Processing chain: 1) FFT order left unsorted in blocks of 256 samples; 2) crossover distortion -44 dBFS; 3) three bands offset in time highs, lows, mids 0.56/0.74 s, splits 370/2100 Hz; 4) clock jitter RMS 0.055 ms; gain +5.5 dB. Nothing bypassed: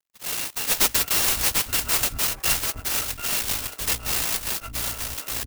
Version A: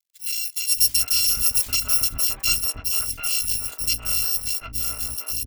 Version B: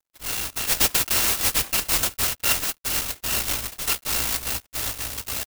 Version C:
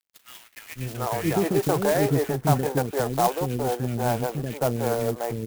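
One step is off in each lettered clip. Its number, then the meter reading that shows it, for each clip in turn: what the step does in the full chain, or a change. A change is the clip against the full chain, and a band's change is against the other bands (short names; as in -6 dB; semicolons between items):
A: 4, 4 kHz band +8.0 dB; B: 3, crest factor change -2.0 dB; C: 1, 8 kHz band -23.0 dB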